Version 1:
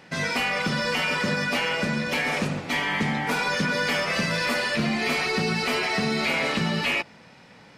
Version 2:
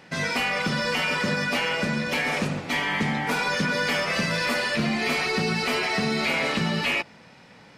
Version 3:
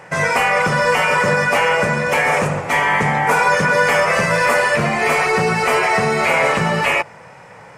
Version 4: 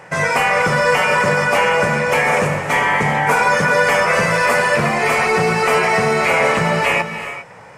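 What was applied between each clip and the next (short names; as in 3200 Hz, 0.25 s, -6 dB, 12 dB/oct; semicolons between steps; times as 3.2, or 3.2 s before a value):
nothing audible
graphic EQ 125/250/500/1000/2000/4000/8000 Hz +6/-10/+7/+7/+4/-12/+7 dB; gain +6 dB
non-linear reverb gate 0.43 s rising, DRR 9.5 dB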